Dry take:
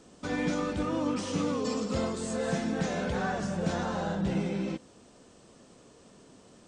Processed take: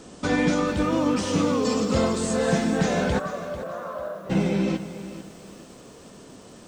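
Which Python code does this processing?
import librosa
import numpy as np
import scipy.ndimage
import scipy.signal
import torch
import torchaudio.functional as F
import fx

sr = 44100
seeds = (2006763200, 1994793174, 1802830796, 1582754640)

y = fx.rider(x, sr, range_db=10, speed_s=0.5)
y = fx.double_bandpass(y, sr, hz=830.0, octaves=0.87, at=(3.18, 4.29), fade=0.02)
y = fx.echo_crushed(y, sr, ms=445, feedback_pct=35, bits=9, wet_db=-13.0)
y = y * librosa.db_to_amplitude(8.0)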